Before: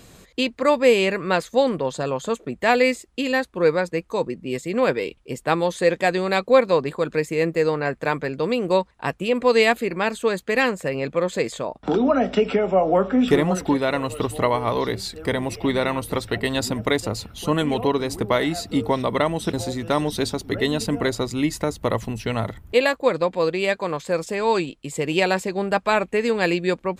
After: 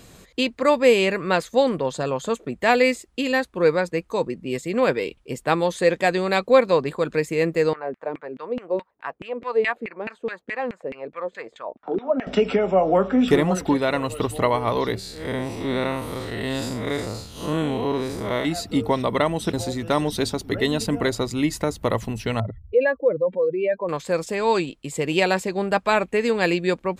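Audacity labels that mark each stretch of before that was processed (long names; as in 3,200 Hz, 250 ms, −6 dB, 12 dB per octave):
7.730000	12.270000	auto-filter band-pass saw down 4.7 Hz 240–2,400 Hz
14.990000	18.450000	spectrum smeared in time width 149 ms
22.400000	23.890000	expanding power law on the bin magnitudes exponent 2.2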